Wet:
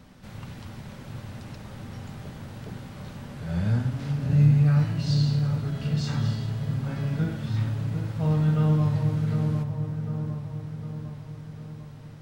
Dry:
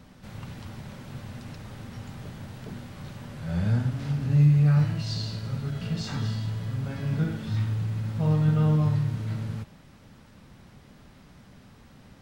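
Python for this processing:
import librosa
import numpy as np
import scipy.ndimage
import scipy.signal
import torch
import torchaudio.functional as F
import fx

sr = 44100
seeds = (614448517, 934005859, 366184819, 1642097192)

y = x + fx.echo_wet_lowpass(x, sr, ms=752, feedback_pct=56, hz=1200.0, wet_db=-5.5, dry=0)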